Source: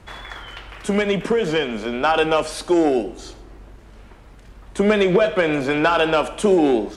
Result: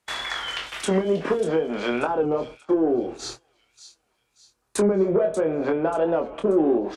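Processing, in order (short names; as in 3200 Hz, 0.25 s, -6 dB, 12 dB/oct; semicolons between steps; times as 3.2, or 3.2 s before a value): RIAA curve recording; treble ducked by the level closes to 460 Hz, closed at -18 dBFS; gate -38 dBFS, range -28 dB; 1.91–5.06 thirty-one-band EQ 125 Hz +8 dB, 630 Hz -5 dB, 2000 Hz -6 dB, 3150 Hz -11 dB; soft clip -14.5 dBFS, distortion -23 dB; doubler 25 ms -5.5 dB; thin delay 0.584 s, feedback 39%, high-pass 3600 Hz, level -10.5 dB; record warp 45 rpm, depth 100 cents; gain +3 dB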